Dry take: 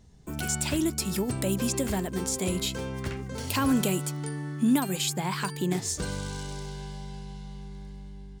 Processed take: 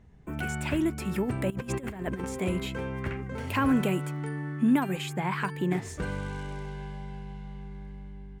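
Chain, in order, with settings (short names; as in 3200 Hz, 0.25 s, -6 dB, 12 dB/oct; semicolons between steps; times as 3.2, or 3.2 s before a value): resonant high shelf 3200 Hz -12.5 dB, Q 1.5; 1.5–2.25 negative-ratio compressor -33 dBFS, ratio -0.5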